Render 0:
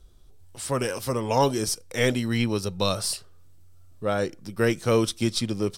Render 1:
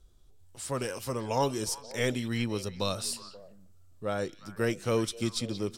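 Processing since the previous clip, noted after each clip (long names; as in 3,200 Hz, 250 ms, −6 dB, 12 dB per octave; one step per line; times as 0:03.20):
parametric band 7,100 Hz +4.5 dB 0.25 octaves
echo through a band-pass that steps 177 ms, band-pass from 3,600 Hz, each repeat −1.4 octaves, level −10 dB
level −6.5 dB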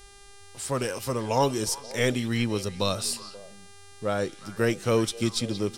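hum with harmonics 400 Hz, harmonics 28, −57 dBFS −2 dB per octave
level +4.5 dB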